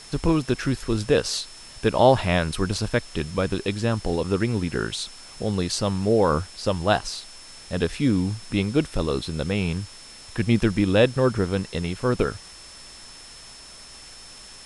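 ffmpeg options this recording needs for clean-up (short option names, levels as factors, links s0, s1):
-af "bandreject=f=5300:w=30,afftdn=nr=24:nf=-44"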